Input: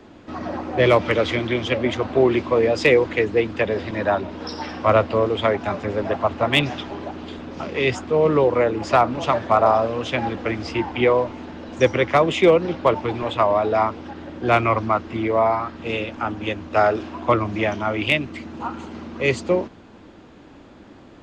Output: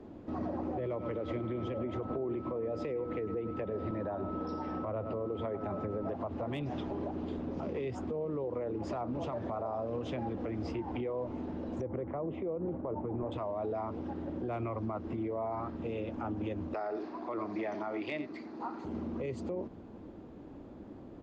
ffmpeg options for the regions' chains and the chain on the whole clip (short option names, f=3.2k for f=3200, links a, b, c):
-filter_complex "[0:a]asettb=1/sr,asplit=3[a][b][c];[a]atrim=end=0.794[d];[b]atrim=start=0.79:end=6.09,asetpts=PTS-STARTPTS,afade=t=in:d=0.004:c=qsin,afade=t=out:st=5.296:d=0.004:c=qsin,highshelf=f=3.6k:g=-9.5,aeval=exprs='val(0)+0.0316*sin(2*PI*1300*n/s)':c=same,aecho=1:1:103:0.158,atrim=end_sample=233730[e];[c]atrim=start=6.086[f];[d][e]acrossfade=d=0.004:c1=hsin:c2=qsin[g];[g][f]acrossfade=d=0.004:c1=qsin:c2=hsin,asettb=1/sr,asplit=3[h][i][j];[h]atrim=end=11.814[k];[i]atrim=start=11.81:end=13.32,asetpts=PTS-STARTPTS,afade=t=in:d=0.004:c=qsin,afade=t=out:st=1.506:d=0.004:c=qsin,lowpass=1.2k,agate=range=-33dB:threshold=-32dB:ratio=3:release=100:detection=peak,acompressor=threshold=-21dB:ratio=8:attack=3.2:release=140:knee=1:detection=peak[l];[j]atrim=start=13.316[m];[k][l]acrossfade=d=0.004:c1=hsin:c2=qsin[n];[n][m]acrossfade=d=0.004:c1=qsin:c2=hsin,asettb=1/sr,asplit=3[o][p][q];[o]atrim=end=16.744[r];[p]atrim=start=16.74:end=18.85,asetpts=PTS-STARTPTS,afade=t=in:d=0.004:c=qsin,afade=t=out:st=2.106:d=0.004:c=qsin,highpass=350,equalizer=f=530:t=q:w=4:g=-6,equalizer=f=1.9k:t=q:w=4:g=4,equalizer=f=3k:t=q:w=4:g=-6,equalizer=f=4.5k:t=q:w=4:g=9,lowpass=f=6.7k:w=0.5412,lowpass=f=6.7k:w=1.3066,aecho=1:1:86:0.168,atrim=end_sample=93051[s];[q]atrim=start=18.846[t];[r][s]acrossfade=d=0.004:c1=hsin:c2=qsin[u];[u][t]acrossfade=d=0.004:c1=qsin:c2=hsin,firequalizer=gain_entry='entry(380,0);entry(1500,-12);entry(3000,-15)':delay=0.05:min_phase=1,acompressor=threshold=-23dB:ratio=6,alimiter=level_in=1.5dB:limit=-24dB:level=0:latency=1:release=93,volume=-1.5dB,volume=-2.5dB"